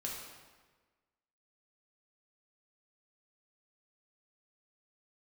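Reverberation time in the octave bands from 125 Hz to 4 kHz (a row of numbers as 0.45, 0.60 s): 1.4, 1.4, 1.4, 1.3, 1.2, 1.1 s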